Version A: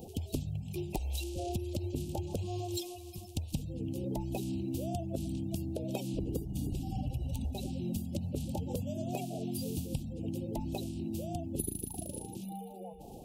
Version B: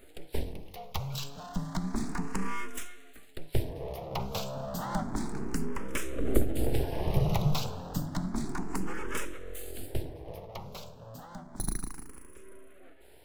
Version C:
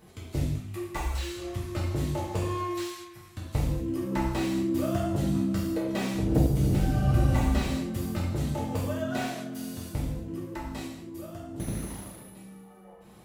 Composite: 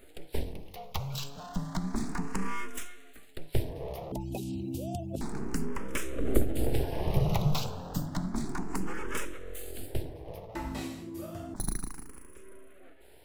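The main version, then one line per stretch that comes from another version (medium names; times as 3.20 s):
B
4.12–5.21 s: from A
10.55–11.54 s: from C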